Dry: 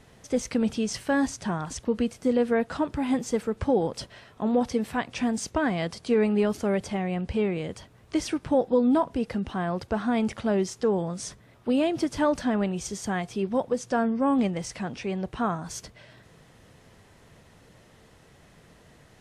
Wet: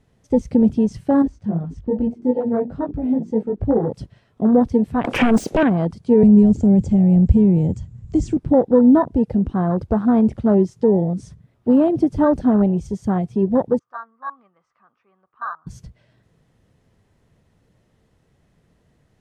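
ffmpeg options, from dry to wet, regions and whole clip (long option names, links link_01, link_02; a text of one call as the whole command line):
ffmpeg -i in.wav -filter_complex "[0:a]asettb=1/sr,asplit=3[link_01][link_02][link_03];[link_01]atrim=end=1.224[link_04];[link_02]atrim=start=1.22:end=3.9,asetpts=PTS-STARTPTS,afade=type=in:duration=0.004:curve=qsin,afade=type=out:start_time=2.676:duration=0.004:curve=qsin,lowpass=frequency=2200:poles=1,bandreject=frequency=60:width_type=h:width=6,bandreject=frequency=120:width_type=h:width=6,bandreject=frequency=180:width_type=h:width=6,bandreject=frequency=240:width_type=h:width=6,bandreject=frequency=300:width_type=h:width=6,bandreject=frequency=360:width_type=h:width=6,bandreject=frequency=420:width_type=h:width=6,bandreject=frequency=480:width_type=h:width=6,flanger=delay=17.5:depth=3:speed=2.4[link_05];[link_03]atrim=start=3.896[link_06];[link_04][link_05]acrossfade=duration=0.004:curve1=hsin:curve2=qsin[link_07];[link_07][link_06]acrossfade=duration=0.004:curve1=qsin:curve2=hsin,asettb=1/sr,asplit=3[link_08][link_09][link_10];[link_08]atrim=end=5.044[link_11];[link_09]atrim=start=5.04:end=5.63,asetpts=PTS-STARTPTS,afade=type=in:duration=0.004:curve=qsin,afade=type=out:start_time=0.586:duration=0.004:curve=qsin,highpass=380,acompressor=threshold=-32dB:ratio=16:attack=3.2:release=140:knee=1:detection=peak,aeval=exprs='0.119*sin(PI/2*6.31*val(0)/0.119)':channel_layout=same[link_12];[link_10]atrim=start=5.626[link_13];[link_11][link_12]acrossfade=duration=0.004:curve1=hsin:curve2=qsin[link_14];[link_14][link_13]acrossfade=duration=0.004:curve1=qsin:curve2=hsin,asettb=1/sr,asplit=3[link_15][link_16][link_17];[link_15]atrim=end=6.234[link_18];[link_16]atrim=start=6.23:end=8.37,asetpts=PTS-STARTPTS,afade=type=in:duration=0.004:curve=qsin,afade=type=out:start_time=2.136:duration=0.004:curve=qsin,bass=frequency=250:gain=8,treble=frequency=4000:gain=-2,acrossover=split=290|3000[link_19][link_20][link_21];[link_20]acompressor=threshold=-34dB:ratio=3:attack=3.2:release=140:knee=2.83:detection=peak[link_22];[link_19][link_22][link_21]amix=inputs=3:normalize=0,lowpass=frequency=7300:width_type=q:width=7.7[link_23];[link_17]atrim=start=8.366[link_24];[link_18][link_23]acrossfade=duration=0.004:curve1=hsin:curve2=qsin[link_25];[link_25][link_24]acrossfade=duration=0.004:curve1=qsin:curve2=hsin,asettb=1/sr,asplit=3[link_26][link_27][link_28];[link_26]atrim=end=13.794[link_29];[link_27]atrim=start=13.79:end=15.67,asetpts=PTS-STARTPTS,afade=type=in:duration=0.004:curve=qsin,afade=type=out:start_time=1.876:duration=0.004:curve=qsin,lowpass=frequency=1200:width_type=q:width=12,aderivative[link_30];[link_28]atrim=start=15.666[link_31];[link_29][link_30]acrossfade=duration=0.004:curve1=hsin:curve2=qsin[link_32];[link_32][link_31]acrossfade=duration=0.004:curve1=qsin:curve2=hsin,lowshelf=frequency=420:gain=9.5,afwtdn=0.0501,volume=3.5dB" out.wav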